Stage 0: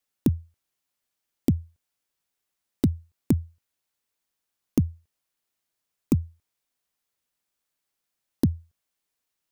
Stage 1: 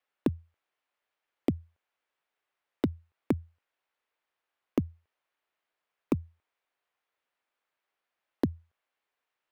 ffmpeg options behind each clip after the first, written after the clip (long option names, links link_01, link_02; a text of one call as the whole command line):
ffmpeg -i in.wav -filter_complex "[0:a]acrossover=split=380 3000:gain=0.158 1 0.0891[link_01][link_02][link_03];[link_01][link_02][link_03]amix=inputs=3:normalize=0,volume=5dB" out.wav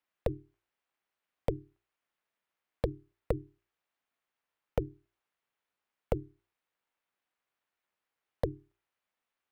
ffmpeg -i in.wav -af "bandreject=frequency=60:width_type=h:width=6,bandreject=frequency=120:width_type=h:width=6,bandreject=frequency=180:width_type=h:width=6,aeval=exprs='val(0)*sin(2*PI*220*n/s)':channel_layout=same" out.wav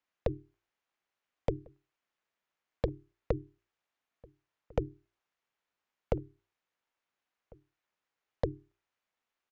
ffmpeg -i in.wav -filter_complex "[0:a]aresample=16000,aresample=44100,asplit=2[link_01][link_02];[link_02]adelay=1399,volume=-25dB,highshelf=frequency=4000:gain=-31.5[link_03];[link_01][link_03]amix=inputs=2:normalize=0" out.wav